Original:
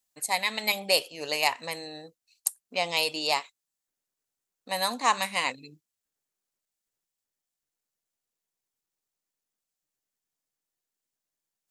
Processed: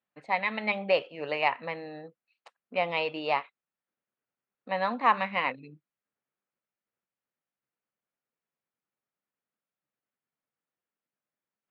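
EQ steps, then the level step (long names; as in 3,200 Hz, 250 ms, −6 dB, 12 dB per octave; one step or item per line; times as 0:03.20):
loudspeaker in its box 110–2,600 Hz, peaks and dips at 140 Hz +4 dB, 210 Hz +5 dB, 540 Hz +3 dB, 1,300 Hz +4 dB
0.0 dB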